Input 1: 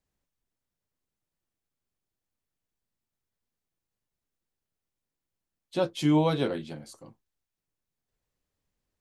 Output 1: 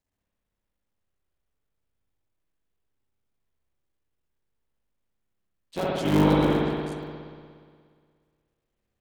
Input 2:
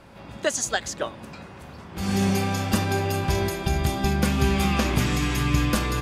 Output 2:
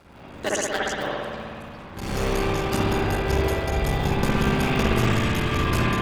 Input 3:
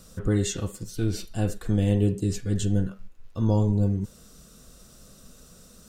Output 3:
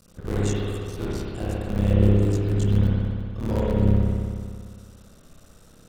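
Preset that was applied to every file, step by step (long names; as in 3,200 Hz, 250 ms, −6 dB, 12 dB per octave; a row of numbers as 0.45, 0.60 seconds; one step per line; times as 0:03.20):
sub-harmonics by changed cycles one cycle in 3, muted
spring reverb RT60 2 s, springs 59 ms, chirp 70 ms, DRR −5.5 dB
loudness normalisation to −24 LKFS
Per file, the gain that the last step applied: −1.5, −2.5, −4.0 decibels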